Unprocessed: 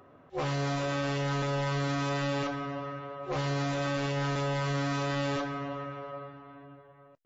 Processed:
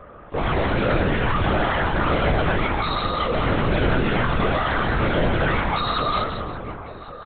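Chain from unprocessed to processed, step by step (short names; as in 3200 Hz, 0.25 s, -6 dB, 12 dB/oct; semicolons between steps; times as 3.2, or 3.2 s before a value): spectral noise reduction 18 dB; comb 7.1 ms, depth 64%; overdrive pedal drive 36 dB, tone 1800 Hz, clips at -20 dBFS; formant-preserving pitch shift +3.5 st; outdoor echo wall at 190 m, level -12 dB; vibrato 0.69 Hz 6.7 cents; on a send: feedback echo 0.171 s, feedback 29%, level -5.5 dB; on the sum: LPC vocoder at 8 kHz whisper; gain +4.5 dB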